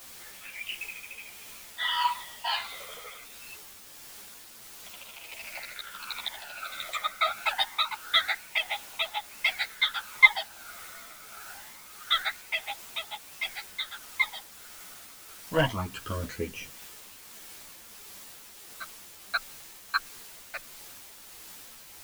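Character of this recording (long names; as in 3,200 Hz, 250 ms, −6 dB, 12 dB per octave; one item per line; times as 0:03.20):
phaser sweep stages 12, 0.25 Hz, lowest notch 280–1,600 Hz
a quantiser's noise floor 8 bits, dither triangular
tremolo triangle 1.5 Hz, depth 35%
a shimmering, thickened sound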